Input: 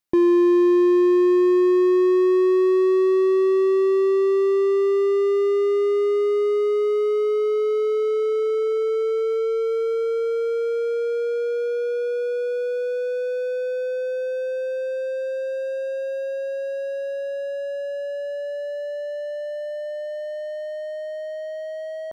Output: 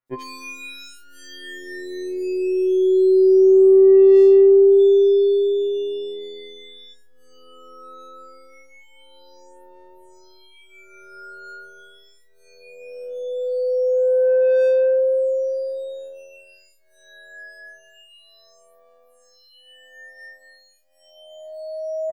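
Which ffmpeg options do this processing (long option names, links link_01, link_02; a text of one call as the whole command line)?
ffmpeg -i in.wav -filter_complex "[0:a]aeval=exprs='0.299*(cos(1*acos(clip(val(0)/0.299,-1,1)))-cos(1*PI/2))+0.00299*(cos(2*acos(clip(val(0)/0.299,-1,1)))-cos(2*PI/2))+0.0168*(cos(3*acos(clip(val(0)/0.299,-1,1)))-cos(3*PI/2))+0.00335*(cos(4*acos(clip(val(0)/0.299,-1,1)))-cos(4*PI/2))+0.0299*(cos(5*acos(clip(val(0)/0.299,-1,1)))-cos(5*PI/2))':channel_layout=same,asettb=1/sr,asplit=3[link_01][link_02][link_03];[link_01]atrim=end=4.724[link_04];[link_02]atrim=start=4.72:end=6.85,asetpts=PTS-STARTPTS,afade=type=in:duration=0.004:curve=qsin,afade=type=out:start_time=2.126:duration=0.004:curve=qsin,aeval=exprs='val(0)+0.00562*sin(2*PI*3500*n/s)':channel_layout=same[link_05];[link_03]atrim=start=6.846[link_06];[link_04][link_05]acrossfade=duration=0.004:curve1=hsin:curve2=qsin[link_07];[link_07][link_06]acrossfade=duration=0.004:curve1=qsin:curve2=hsin,acrossover=split=2100[link_08][link_09];[link_09]adelay=80[link_10];[link_08][link_10]amix=inputs=2:normalize=0,afftfilt=real='re*2.45*eq(mod(b,6),0)':imag='im*2.45*eq(mod(b,6),0)':win_size=2048:overlap=0.75,volume=2.5dB" out.wav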